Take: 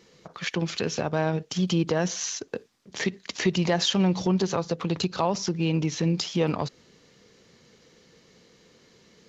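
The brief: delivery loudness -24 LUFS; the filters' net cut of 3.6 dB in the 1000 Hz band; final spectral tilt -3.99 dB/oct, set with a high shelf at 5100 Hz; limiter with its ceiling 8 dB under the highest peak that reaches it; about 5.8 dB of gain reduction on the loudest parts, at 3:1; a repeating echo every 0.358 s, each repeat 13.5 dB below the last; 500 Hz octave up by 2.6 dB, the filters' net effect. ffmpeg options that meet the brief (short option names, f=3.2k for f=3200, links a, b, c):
-af "equalizer=f=500:t=o:g=5,equalizer=f=1k:t=o:g=-7.5,highshelf=f=5.1k:g=7.5,acompressor=threshold=-25dB:ratio=3,alimiter=limit=-22.5dB:level=0:latency=1,aecho=1:1:358|716:0.211|0.0444,volume=8.5dB"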